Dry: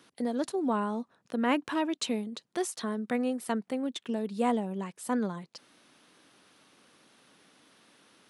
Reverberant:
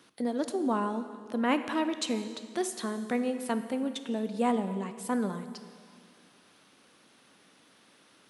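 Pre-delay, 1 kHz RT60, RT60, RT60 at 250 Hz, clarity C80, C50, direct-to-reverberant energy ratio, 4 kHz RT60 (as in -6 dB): 6 ms, 2.2 s, 2.1 s, 2.2 s, 11.5 dB, 10.5 dB, 9.0 dB, 2.0 s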